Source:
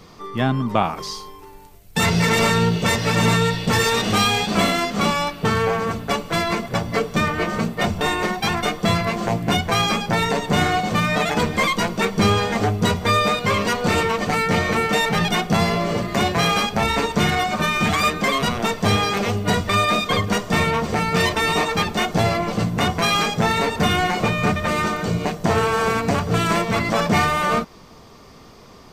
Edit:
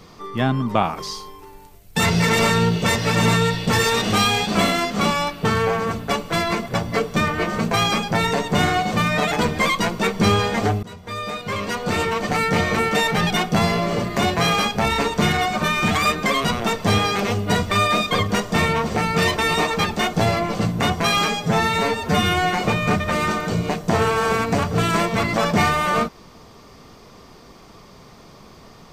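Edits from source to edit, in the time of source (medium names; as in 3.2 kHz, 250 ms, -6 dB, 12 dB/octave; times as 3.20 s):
7.71–9.69 s: delete
12.81–14.38 s: fade in, from -23.5 dB
23.25–24.09 s: stretch 1.5×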